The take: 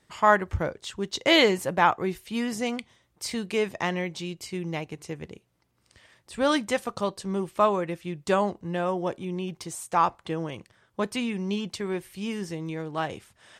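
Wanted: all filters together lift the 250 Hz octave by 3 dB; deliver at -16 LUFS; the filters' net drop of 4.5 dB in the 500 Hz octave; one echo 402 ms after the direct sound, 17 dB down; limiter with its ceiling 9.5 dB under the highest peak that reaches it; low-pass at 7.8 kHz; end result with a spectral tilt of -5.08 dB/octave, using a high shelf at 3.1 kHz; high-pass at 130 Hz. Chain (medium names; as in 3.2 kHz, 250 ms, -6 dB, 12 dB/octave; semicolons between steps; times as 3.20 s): high-pass 130 Hz; low-pass 7.8 kHz; peaking EQ 250 Hz +7 dB; peaking EQ 500 Hz -8 dB; treble shelf 3.1 kHz -6.5 dB; peak limiter -17 dBFS; delay 402 ms -17 dB; trim +14.5 dB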